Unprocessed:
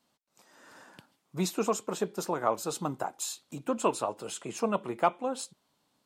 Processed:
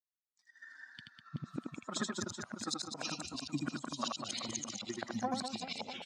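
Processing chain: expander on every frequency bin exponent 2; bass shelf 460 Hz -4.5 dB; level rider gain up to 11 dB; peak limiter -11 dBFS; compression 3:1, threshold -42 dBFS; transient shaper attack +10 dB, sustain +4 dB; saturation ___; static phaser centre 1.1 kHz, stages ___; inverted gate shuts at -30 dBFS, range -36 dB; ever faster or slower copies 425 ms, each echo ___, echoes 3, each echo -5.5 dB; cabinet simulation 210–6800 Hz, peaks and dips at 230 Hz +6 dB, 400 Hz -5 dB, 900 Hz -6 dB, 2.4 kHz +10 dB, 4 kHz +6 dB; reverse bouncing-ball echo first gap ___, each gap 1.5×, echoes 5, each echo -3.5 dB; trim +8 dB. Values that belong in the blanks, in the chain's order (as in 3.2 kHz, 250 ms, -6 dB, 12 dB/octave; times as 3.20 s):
-21 dBFS, 4, -5 st, 80 ms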